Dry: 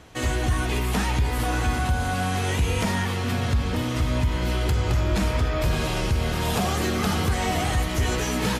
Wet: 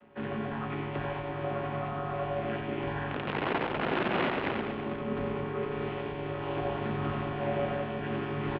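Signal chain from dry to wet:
channel vocoder with a chord as carrier minor triad, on A#2
0:03.10–0:04.52: wrap-around overflow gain 23 dB
on a send: reverse bouncing-ball delay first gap 90 ms, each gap 1.2×, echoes 5
on the sum: single-sideband voice off tune −130 Hz 310–3,200 Hz

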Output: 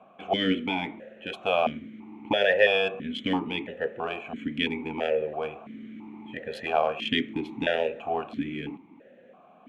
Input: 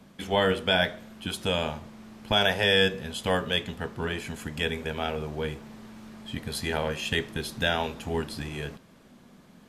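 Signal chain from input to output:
adaptive Wiener filter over 9 samples
boost into a limiter +14 dB
formant filter that steps through the vowels 3 Hz
level +1 dB

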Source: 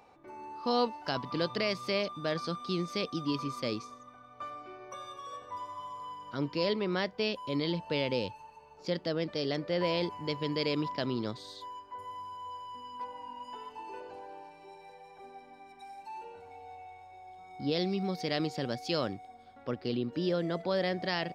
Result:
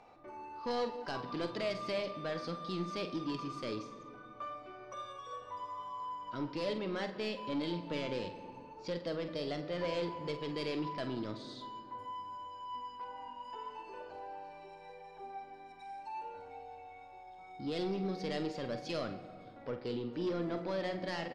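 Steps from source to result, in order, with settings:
in parallel at −3 dB: downward compressor, threshold −47 dBFS, peak gain reduction 21 dB
on the sum: flanger 0.21 Hz, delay 1.4 ms, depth 2.5 ms, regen +68%
soft clipping −30 dBFS, distortion −14 dB
high-frequency loss of the air 68 metres
double-tracking delay 47 ms −10 dB
on a send at −10 dB: convolution reverb RT60 2.0 s, pre-delay 3 ms

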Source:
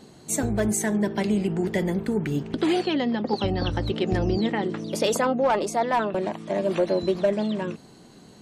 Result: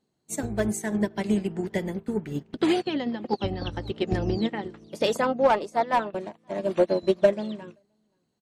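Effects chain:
slap from a distant wall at 90 metres, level −18 dB
expander for the loud parts 2.5 to 1, over −39 dBFS
level +5 dB

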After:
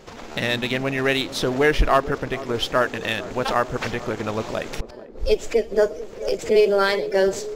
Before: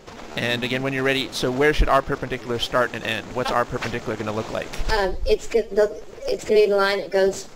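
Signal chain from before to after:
0:04.74–0:05.21: gate with flip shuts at −13 dBFS, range −30 dB
feedback echo with a band-pass in the loop 443 ms, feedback 77%, band-pass 380 Hz, level −14.5 dB

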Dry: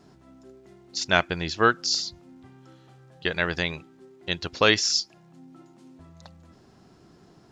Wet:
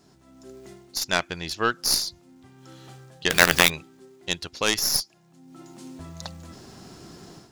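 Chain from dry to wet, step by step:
stylus tracing distortion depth 0.067 ms
high-shelf EQ 4,500 Hz +12 dB
automatic gain control gain up to 13.5 dB
0:03.30–0:03.70: log-companded quantiser 2 bits
level −4.5 dB

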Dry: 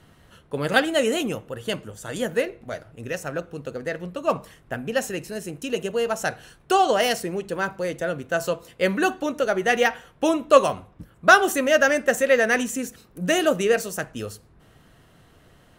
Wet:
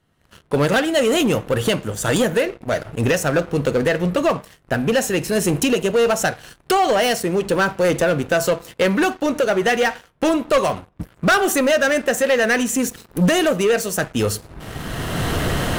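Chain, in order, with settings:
camcorder AGC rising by 19 dB per second
leveller curve on the samples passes 3
level −7.5 dB

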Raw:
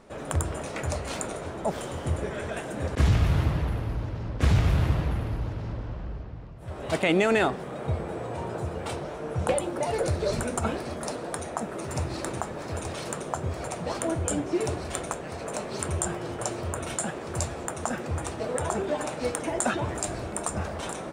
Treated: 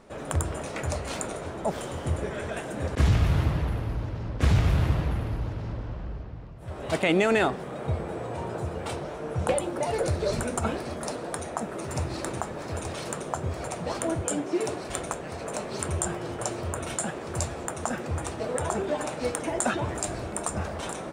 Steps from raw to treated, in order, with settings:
0:14.21–0:14.90: high-pass filter 180 Hz 12 dB per octave

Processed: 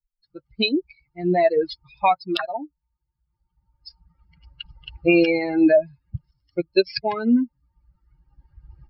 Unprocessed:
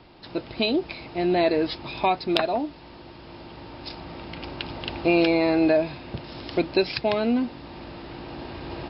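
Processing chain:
spectral dynamics exaggerated over time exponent 3
boost into a limiter +12.5 dB
0:06.31–0:06.87: expander for the loud parts 1.5 to 1, over −27 dBFS
level −4.5 dB

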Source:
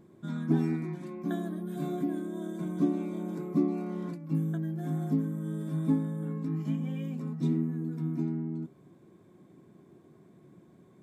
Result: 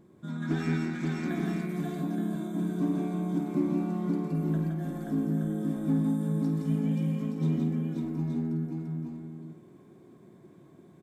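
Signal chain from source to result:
in parallel at −8 dB: hard clipping −30 dBFS, distortion −8 dB
0:06.04–0:06.59: on the sum: high shelf with overshoot 3,300 Hz +8 dB, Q 1.5
on a send: flutter between parallel walls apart 8.8 metres, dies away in 0.3 s
0:00.42–0:01.28: on the sum: gain on a spectral selection 1,200–8,100 Hz +10 dB
multi-tap delay 168/530/872 ms −3/−3.5/−6 dB
level −4 dB

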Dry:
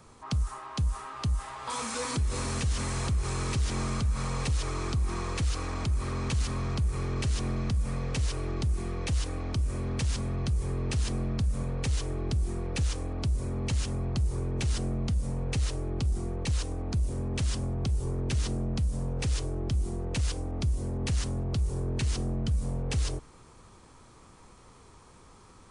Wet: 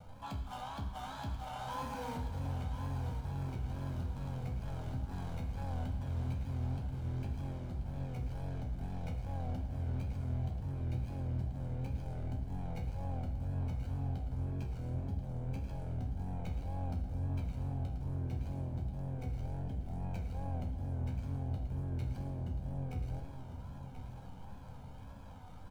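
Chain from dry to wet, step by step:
running median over 25 samples
comb filter 1.3 ms, depth 85%
brickwall limiter −33 dBFS, peak gain reduction 17 dB
soft clipping −35.5 dBFS, distortion −19 dB
resonators tuned to a chord C2 sus4, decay 0.33 s
tape wow and flutter 97 cents
repeating echo 1,034 ms, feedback 45%, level −10 dB
convolution reverb RT60 1.5 s, pre-delay 59 ms, DRR 9.5 dB
level +12 dB

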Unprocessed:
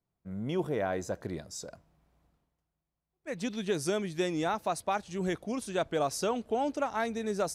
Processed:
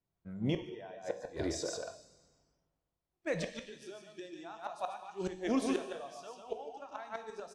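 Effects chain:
on a send: single-tap delay 144 ms −4 dB
on the sum: gate with flip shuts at −23 dBFS, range −25 dB
high-shelf EQ 3,300 Hz +11 dB
in parallel at −1 dB: compressor whose output falls as the input rises −40 dBFS, ratio −1
on the sum: head-to-tape spacing loss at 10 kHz 21 dB
dense smooth reverb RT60 1.5 s, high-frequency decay 0.9×, DRR 6.5 dB
noise reduction from a noise print of the clip's start 12 dB
level +1.5 dB

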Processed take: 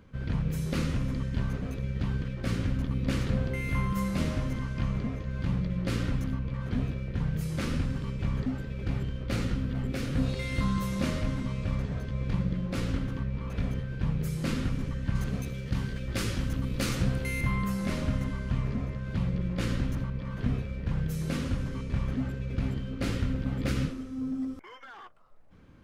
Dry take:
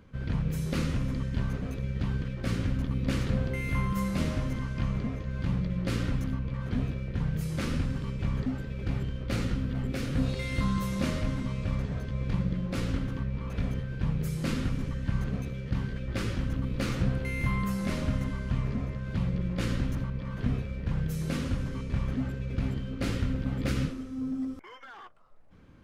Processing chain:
0:15.15–0:17.41: high-shelf EQ 4,400 Hz +11 dB

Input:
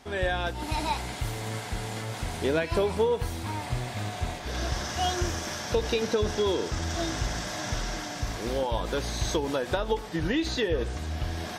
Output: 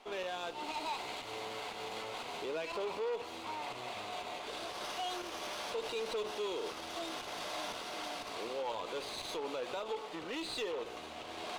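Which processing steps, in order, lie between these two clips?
dynamic equaliser 4,400 Hz, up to +4 dB, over −48 dBFS, Q 2.4
brickwall limiter −24 dBFS, peak gain reduction 11.5 dB
wave folding −27.5 dBFS
loudspeaker in its box 430–6,300 Hz, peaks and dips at 440 Hz +3 dB, 1,100 Hz +3 dB, 1,700 Hz −9 dB, 2,700 Hz +4 dB, 5,400 Hz −8 dB
windowed peak hold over 3 samples
level −3 dB

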